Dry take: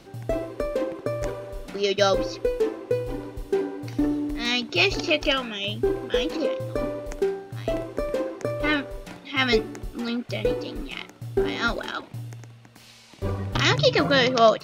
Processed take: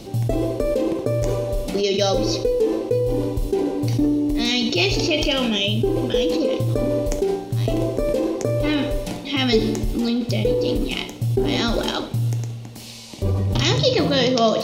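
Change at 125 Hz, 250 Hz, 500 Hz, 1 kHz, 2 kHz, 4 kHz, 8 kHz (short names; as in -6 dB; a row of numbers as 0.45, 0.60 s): +10.0, +7.0, +3.5, -0.5, -2.5, +4.0, +7.0 dB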